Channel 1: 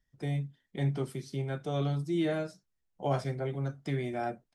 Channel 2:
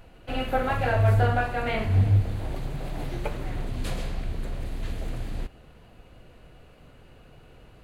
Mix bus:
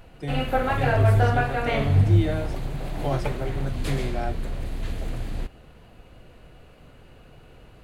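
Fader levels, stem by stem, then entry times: +2.5, +2.0 dB; 0.00, 0.00 s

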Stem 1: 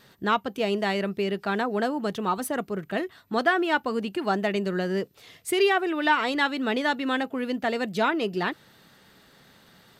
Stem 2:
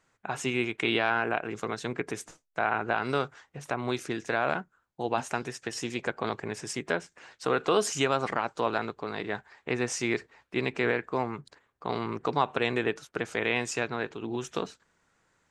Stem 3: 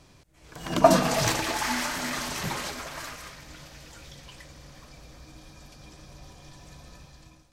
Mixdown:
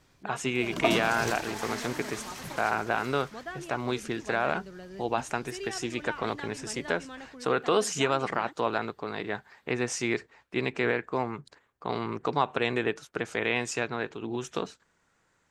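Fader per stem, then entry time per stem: -17.5, 0.0, -9.5 dB; 0.00, 0.00, 0.00 s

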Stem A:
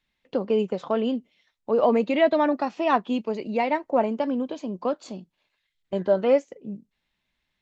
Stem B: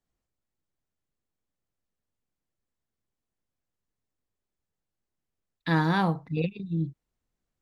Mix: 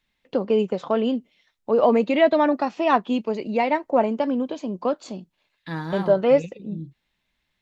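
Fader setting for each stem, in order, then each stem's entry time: +2.5, -6.5 dB; 0.00, 0.00 s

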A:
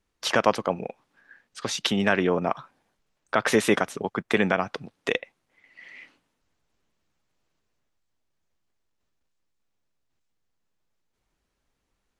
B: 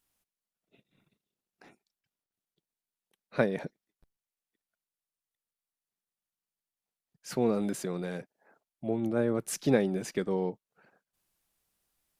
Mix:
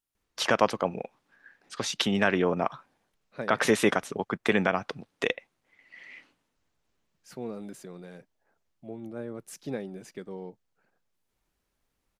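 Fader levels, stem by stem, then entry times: -2.0, -9.5 dB; 0.15, 0.00 s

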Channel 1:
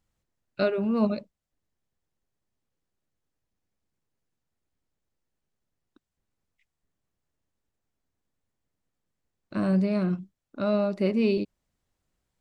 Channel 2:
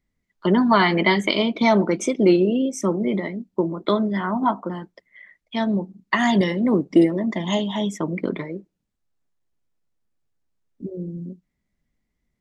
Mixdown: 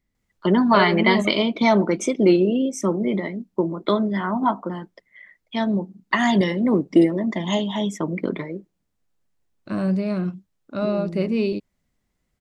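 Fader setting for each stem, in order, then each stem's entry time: +1.5, 0.0 dB; 0.15, 0.00 s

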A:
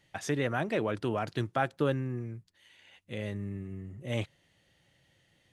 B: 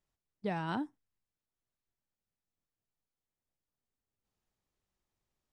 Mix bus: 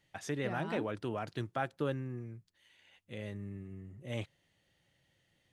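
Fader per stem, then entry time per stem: -6.0, -6.5 dB; 0.00, 0.00 s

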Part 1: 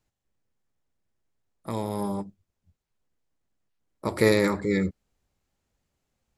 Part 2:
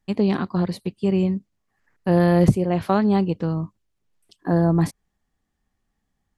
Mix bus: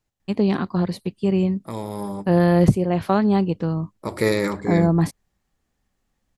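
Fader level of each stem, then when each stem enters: 0.0, +0.5 dB; 0.00, 0.20 s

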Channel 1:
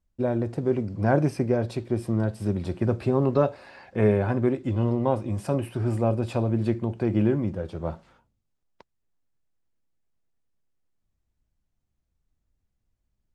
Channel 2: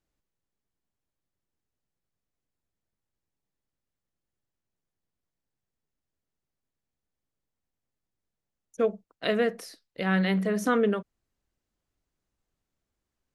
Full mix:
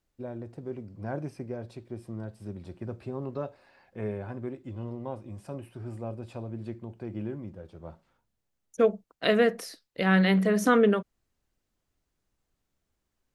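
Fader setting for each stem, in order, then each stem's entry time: -13.0, +3.0 dB; 0.00, 0.00 s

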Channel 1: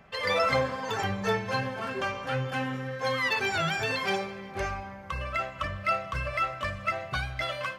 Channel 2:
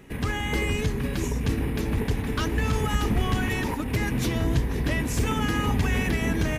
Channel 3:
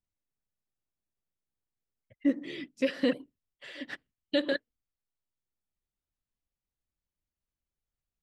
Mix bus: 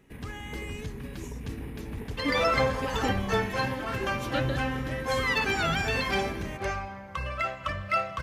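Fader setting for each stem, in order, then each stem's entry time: +0.5, -11.0, -6.0 dB; 2.05, 0.00, 0.00 s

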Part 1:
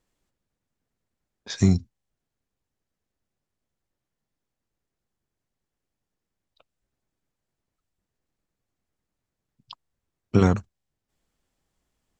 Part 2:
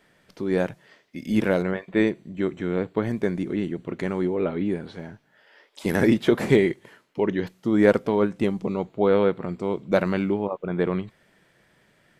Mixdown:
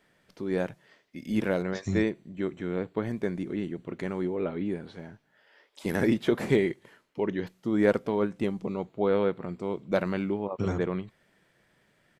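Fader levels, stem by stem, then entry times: -12.0, -5.5 dB; 0.25, 0.00 s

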